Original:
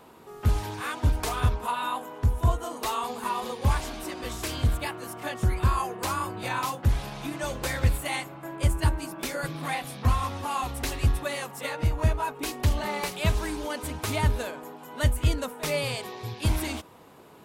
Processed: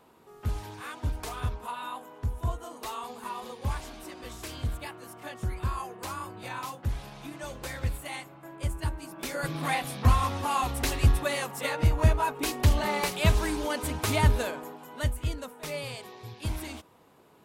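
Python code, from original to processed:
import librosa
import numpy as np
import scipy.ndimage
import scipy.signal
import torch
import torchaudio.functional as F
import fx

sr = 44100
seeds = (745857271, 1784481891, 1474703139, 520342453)

y = fx.gain(x, sr, db=fx.line((9.0, -7.5), (9.56, 2.0), (14.53, 2.0), (15.23, -7.5)))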